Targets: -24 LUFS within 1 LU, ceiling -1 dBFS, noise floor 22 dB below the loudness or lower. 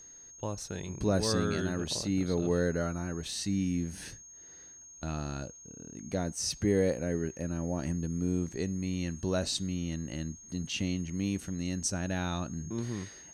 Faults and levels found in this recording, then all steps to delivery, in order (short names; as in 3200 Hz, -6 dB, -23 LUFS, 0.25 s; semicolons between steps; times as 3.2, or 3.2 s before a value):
steady tone 6500 Hz; tone level -49 dBFS; loudness -33.0 LUFS; peak -16.0 dBFS; loudness target -24.0 LUFS
-> notch 6500 Hz, Q 30; gain +9 dB